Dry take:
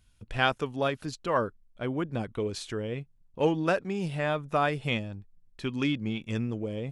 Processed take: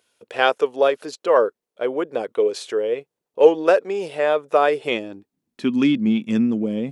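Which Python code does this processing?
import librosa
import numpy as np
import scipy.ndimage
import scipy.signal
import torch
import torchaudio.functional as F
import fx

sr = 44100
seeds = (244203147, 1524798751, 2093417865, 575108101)

y = fx.filter_sweep_highpass(x, sr, from_hz=460.0, to_hz=220.0, start_s=4.6, end_s=5.76, q=3.2)
y = y * librosa.db_to_amplitude(5.0)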